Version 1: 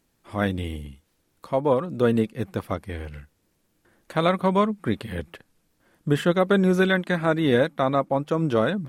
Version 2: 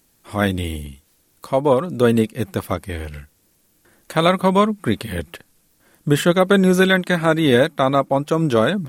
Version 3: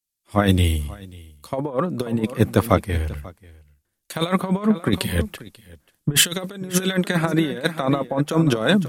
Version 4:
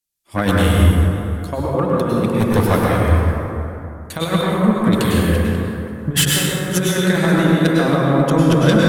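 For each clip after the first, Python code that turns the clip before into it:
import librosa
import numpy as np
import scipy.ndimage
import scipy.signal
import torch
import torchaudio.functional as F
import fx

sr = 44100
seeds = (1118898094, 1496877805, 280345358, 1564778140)

y1 = fx.high_shelf(x, sr, hz=5000.0, db=11.0)
y1 = F.gain(torch.from_numpy(y1), 5.0).numpy()
y2 = fx.over_compress(y1, sr, threshold_db=-19.0, ratio=-0.5)
y2 = y2 + 10.0 ** (-11.5 / 20.0) * np.pad(y2, (int(539 * sr / 1000.0), 0))[:len(y2)]
y2 = fx.band_widen(y2, sr, depth_pct=100)
y3 = fx.fold_sine(y2, sr, drive_db=7, ceiling_db=-1.0)
y3 = fx.rev_plate(y3, sr, seeds[0], rt60_s=2.9, hf_ratio=0.35, predelay_ms=90, drr_db=-4.0)
y3 = F.gain(torch.from_numpy(y3), -9.5).numpy()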